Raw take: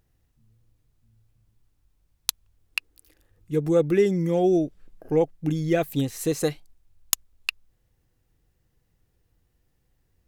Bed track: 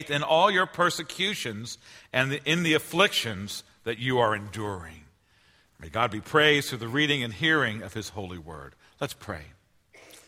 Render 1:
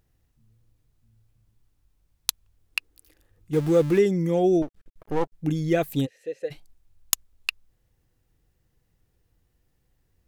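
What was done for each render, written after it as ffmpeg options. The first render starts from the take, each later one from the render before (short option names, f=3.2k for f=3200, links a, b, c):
-filter_complex "[0:a]asettb=1/sr,asplit=3[a][b][c];[a]atrim=end=3.534[d];[b]atrim=start=3.53:end=3.99,asetpts=PTS-STARTPTS,afade=t=in:d=0.004:c=qsin,afade=t=out:st=0.456:d=0.004:c=qsin,aeval=exprs='val(0)+0.5*0.0251*sgn(val(0))':c=same[e];[c]atrim=start=3.986[f];[d][e]acrossfade=d=0.004:c1=hsin:c2=qsin[g];[g][f]acrossfade=d=0.004:c1=qsin:c2=hsin,asettb=1/sr,asplit=3[h][i][j];[h]atrim=end=4.624[k];[i]atrim=start=4.62:end=5.34,asetpts=PTS-STARTPTS,afade=t=in:d=0.004:c=qsin,afade=t=out:st=0.716:d=0.004:c=qsin,aeval=exprs='max(val(0),0)':c=same[l];[j]atrim=start=5.336[m];[k][l]acrossfade=d=0.004:c1=hsin:c2=qsin[n];[n][m]acrossfade=d=0.004:c1=qsin:c2=hsin,asplit=3[o][p][q];[o]afade=t=out:st=6.05:d=0.02[r];[p]asplit=3[s][t][u];[s]bandpass=f=530:t=q:w=8,volume=0dB[v];[t]bandpass=f=1.84k:t=q:w=8,volume=-6dB[w];[u]bandpass=f=2.48k:t=q:w=8,volume=-9dB[x];[v][w][x]amix=inputs=3:normalize=0,afade=t=in:st=6.05:d=0.02,afade=t=out:st=6.5:d=0.02[y];[q]afade=t=in:st=6.5:d=0.02[z];[r][y][z]amix=inputs=3:normalize=0"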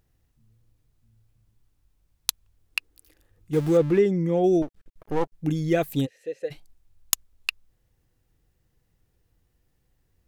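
-filter_complex "[0:a]asettb=1/sr,asplit=3[a][b][c];[a]atrim=end=3.774[d];[b]atrim=start=3.77:end=4.44,asetpts=PTS-STARTPTS,afade=t=in:d=0.004:c=qsin,afade=t=out:st=0.666:d=0.004:c=qsin,lowpass=f=2.5k:p=1[e];[c]atrim=start=4.436[f];[d][e]acrossfade=d=0.004:c1=hsin:c2=qsin[g];[g][f]acrossfade=d=0.004:c1=qsin:c2=hsin"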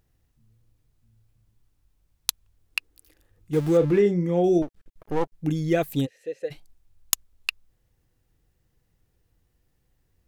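-filter_complex "[0:a]asettb=1/sr,asplit=3[a][b][c];[a]atrim=end=3.784[d];[b]atrim=start=3.78:end=4.59,asetpts=PTS-STARTPTS,afade=t=in:d=0.004:c=qsin,afade=t=out:st=0.806:d=0.004:c=qsin,asplit=2[e][f];[f]adelay=34,volume=-9dB[g];[e][g]amix=inputs=2:normalize=0,atrim=end_sample=35721[h];[c]atrim=start=4.586[i];[d][h]acrossfade=d=0.004:c1=hsin:c2=qsin[j];[j][i]acrossfade=d=0.004:c1=qsin:c2=hsin"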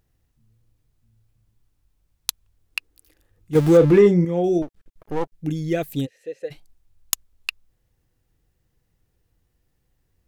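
-filter_complex "[0:a]asettb=1/sr,asplit=3[a][b][c];[a]atrim=end=3.554[d];[b]atrim=start=3.55:end=4.25,asetpts=PTS-STARTPTS,afade=t=in:d=0.004:c=qsin,afade=t=out:st=0.696:d=0.004:c=qsin,acontrast=87[e];[c]atrim=start=4.246[f];[d][e]acrossfade=d=0.004:c1=hsin:c2=qsin[g];[g][f]acrossfade=d=0.004:c1=qsin:c2=hsin,asettb=1/sr,asplit=3[h][i][j];[h]atrim=end=5.314[k];[i]atrim=start=5.31:end=6.13,asetpts=PTS-STARTPTS,afade=t=in:d=0.004:c=qsin,afade=t=out:st=0.816:d=0.004:c=qsin,equalizer=f=1k:w=1.5:g=-6[l];[j]atrim=start=6.126[m];[k][l]acrossfade=d=0.004:c1=hsin:c2=qsin[n];[n][m]acrossfade=d=0.004:c1=qsin:c2=hsin"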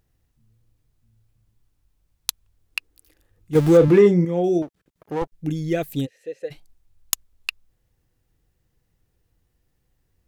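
-filter_complex "[0:a]asettb=1/sr,asplit=3[a][b][c];[a]atrim=end=3.884[d];[b]atrim=start=3.88:end=5.22,asetpts=PTS-STARTPTS,afade=t=in:d=0.004:c=qsin,afade=t=out:st=1.336:d=0.004:c=qsin,highpass=100[e];[c]atrim=start=5.216[f];[d][e]acrossfade=d=0.004:c1=hsin:c2=qsin[g];[g][f]acrossfade=d=0.004:c1=qsin:c2=hsin"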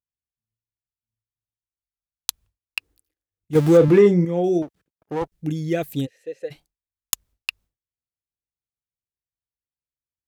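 -af "highpass=43,agate=range=-33dB:threshold=-44dB:ratio=3:detection=peak"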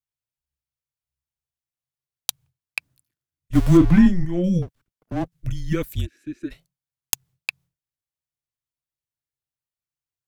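-af "afreqshift=-180"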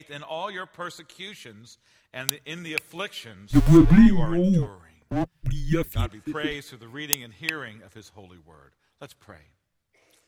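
-filter_complex "[1:a]volume=-11.5dB[a];[0:a][a]amix=inputs=2:normalize=0"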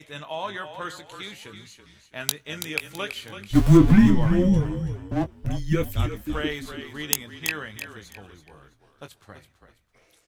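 -filter_complex "[0:a]asplit=2[a][b];[b]adelay=20,volume=-10dB[c];[a][c]amix=inputs=2:normalize=0,asplit=4[d][e][f][g];[e]adelay=330,afreqshift=-36,volume=-9.5dB[h];[f]adelay=660,afreqshift=-72,volume=-19.7dB[i];[g]adelay=990,afreqshift=-108,volume=-29.8dB[j];[d][h][i][j]amix=inputs=4:normalize=0"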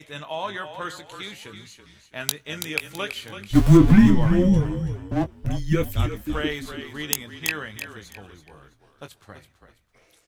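-af "volume=1.5dB,alimiter=limit=-3dB:level=0:latency=1"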